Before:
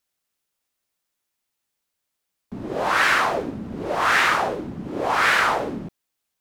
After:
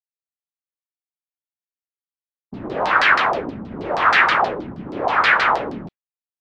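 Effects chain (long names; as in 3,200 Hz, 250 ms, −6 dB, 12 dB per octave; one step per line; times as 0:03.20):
downward expander −31 dBFS
automatic gain control gain up to 6 dB
auto-filter low-pass saw down 6.3 Hz 780–4,900 Hz
level −4 dB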